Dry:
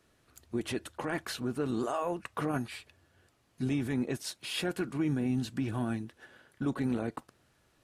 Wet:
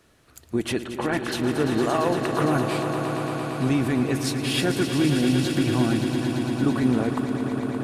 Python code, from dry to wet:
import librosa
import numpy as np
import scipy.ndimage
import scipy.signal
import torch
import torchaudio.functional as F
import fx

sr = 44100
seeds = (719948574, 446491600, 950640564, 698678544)

y = fx.lowpass(x, sr, hz=2800.0, slope=12, at=(0.79, 1.31), fade=0.02)
y = fx.echo_swell(y, sr, ms=114, loudest=5, wet_db=-10.0)
y = F.gain(torch.from_numpy(y), 8.5).numpy()